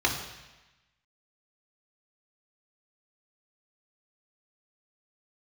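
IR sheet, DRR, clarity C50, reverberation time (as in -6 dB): -0.5 dB, 6.5 dB, 1.1 s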